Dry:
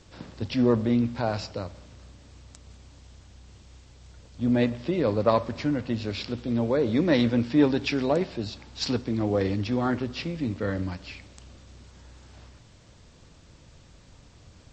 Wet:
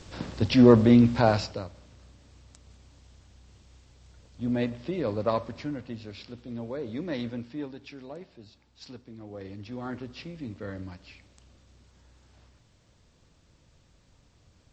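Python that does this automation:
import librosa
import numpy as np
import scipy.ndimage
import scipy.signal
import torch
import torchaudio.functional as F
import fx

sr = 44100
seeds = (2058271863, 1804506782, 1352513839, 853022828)

y = fx.gain(x, sr, db=fx.line((1.29, 6.0), (1.7, -5.0), (5.37, -5.0), (6.09, -11.0), (7.31, -11.0), (7.73, -18.0), (9.25, -18.0), (9.97, -9.0)))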